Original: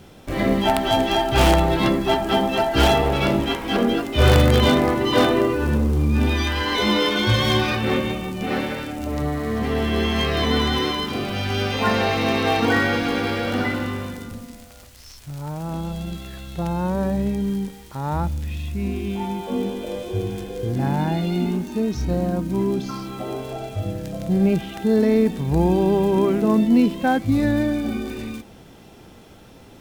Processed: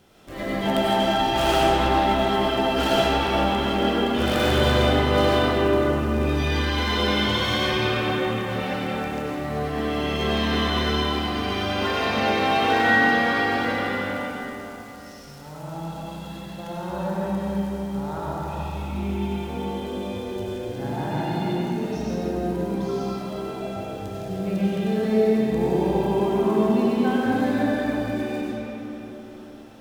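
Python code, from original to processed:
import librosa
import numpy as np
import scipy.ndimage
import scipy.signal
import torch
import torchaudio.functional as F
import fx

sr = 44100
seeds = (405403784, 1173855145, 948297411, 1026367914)

y = fx.low_shelf(x, sr, hz=240.0, db=-7.5)
y = fx.notch(y, sr, hz=2300.0, q=24.0)
y = fx.rev_freeverb(y, sr, rt60_s=4.0, hf_ratio=0.55, predelay_ms=55, drr_db=-7.5)
y = F.gain(torch.from_numpy(y), -8.5).numpy()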